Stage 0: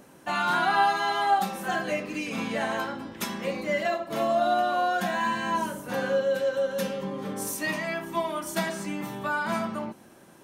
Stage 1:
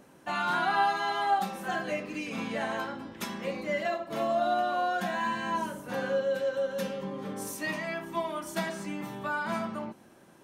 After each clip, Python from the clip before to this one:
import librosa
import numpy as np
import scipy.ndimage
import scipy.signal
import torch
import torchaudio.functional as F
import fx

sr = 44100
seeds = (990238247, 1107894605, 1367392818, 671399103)

y = fx.high_shelf(x, sr, hz=7100.0, db=-5.0)
y = F.gain(torch.from_numpy(y), -3.5).numpy()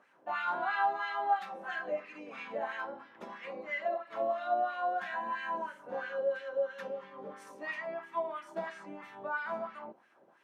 y = fx.filter_lfo_bandpass(x, sr, shape='sine', hz=3.0, low_hz=530.0, high_hz=2100.0, q=1.9)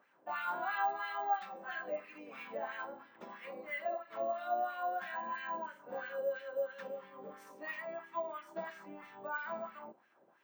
y = np.repeat(scipy.signal.resample_poly(x, 1, 2), 2)[:len(x)]
y = F.gain(torch.from_numpy(y), -4.0).numpy()